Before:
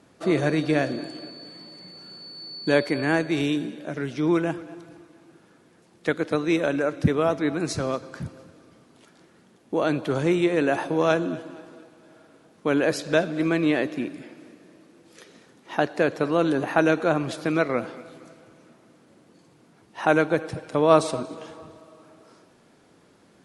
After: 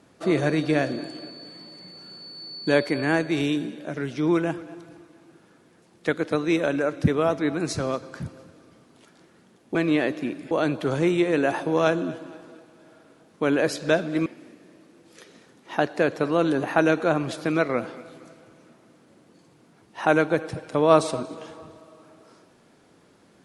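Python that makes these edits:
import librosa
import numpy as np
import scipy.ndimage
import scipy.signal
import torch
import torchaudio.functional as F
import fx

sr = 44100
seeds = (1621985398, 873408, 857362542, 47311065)

y = fx.edit(x, sr, fx.move(start_s=13.5, length_s=0.76, to_s=9.75), tone=tone)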